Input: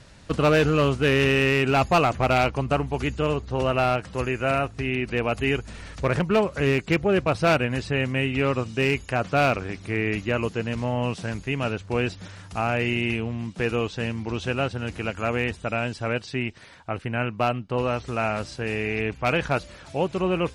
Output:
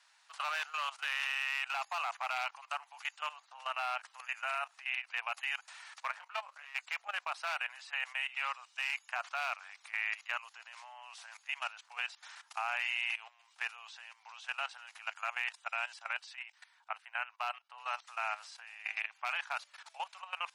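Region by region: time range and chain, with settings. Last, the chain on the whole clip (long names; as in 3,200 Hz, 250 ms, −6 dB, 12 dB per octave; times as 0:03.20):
0:06.11–0:06.76: high-shelf EQ 6,600 Hz −6.5 dB + output level in coarse steps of 9 dB + double-tracking delay 21 ms −9 dB
whole clip: Butterworth high-pass 790 Hz 48 dB per octave; output level in coarse steps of 16 dB; level −3.5 dB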